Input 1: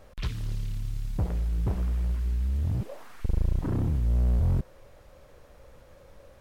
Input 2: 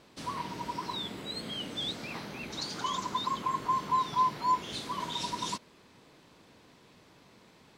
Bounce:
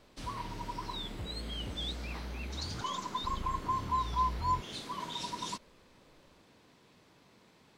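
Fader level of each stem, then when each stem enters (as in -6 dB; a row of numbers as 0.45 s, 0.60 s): -15.0 dB, -4.0 dB; 0.00 s, 0.00 s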